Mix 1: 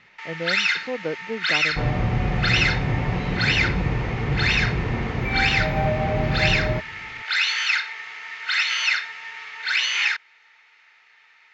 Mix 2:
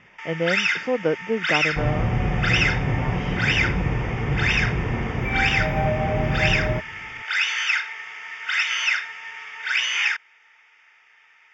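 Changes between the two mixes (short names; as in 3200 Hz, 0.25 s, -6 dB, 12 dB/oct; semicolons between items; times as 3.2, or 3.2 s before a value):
speech +6.0 dB; master: add Butterworth band-stop 4100 Hz, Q 3.3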